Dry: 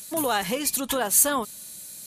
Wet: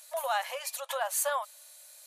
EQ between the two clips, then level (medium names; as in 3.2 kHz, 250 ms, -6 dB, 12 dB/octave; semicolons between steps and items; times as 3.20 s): brick-wall FIR high-pass 520 Hz; treble shelf 3.2 kHz -10 dB; -3.0 dB